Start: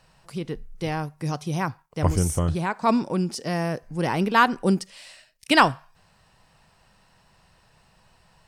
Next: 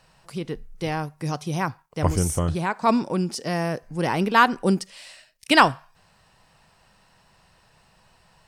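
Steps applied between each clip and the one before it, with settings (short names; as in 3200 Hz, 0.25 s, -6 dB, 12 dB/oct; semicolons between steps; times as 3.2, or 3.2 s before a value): low shelf 200 Hz -3 dB; gain +1.5 dB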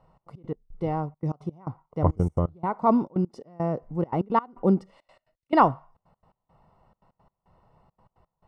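polynomial smoothing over 65 samples; step gate "xx.x.x..xxx" 171 bpm -24 dB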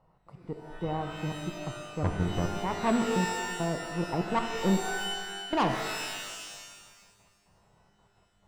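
tube stage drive 18 dB, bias 0.45; shimmer reverb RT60 1.5 s, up +12 st, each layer -2 dB, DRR 6 dB; gain -3 dB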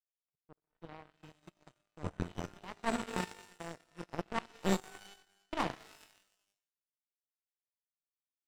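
power-law curve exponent 3; gain +2 dB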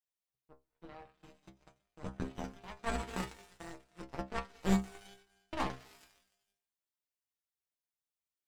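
octaver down 2 oct, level -4 dB; metallic resonator 64 Hz, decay 0.26 s, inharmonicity 0.002; gain +5.5 dB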